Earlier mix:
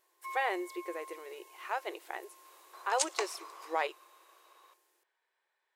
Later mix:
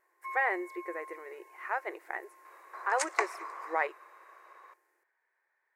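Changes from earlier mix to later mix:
second sound +5.5 dB; master: add resonant high shelf 2500 Hz -8.5 dB, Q 3

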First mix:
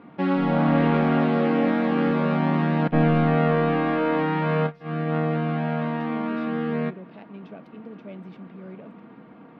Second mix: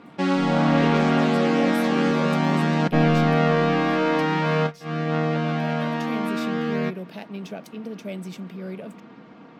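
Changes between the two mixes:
speech +6.0 dB; master: remove air absorption 380 m

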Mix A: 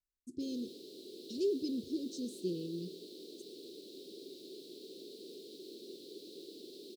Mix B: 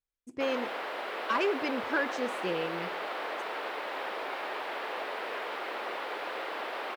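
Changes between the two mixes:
background: send +11.5 dB; master: remove Chebyshev band-stop 390–4000 Hz, order 4

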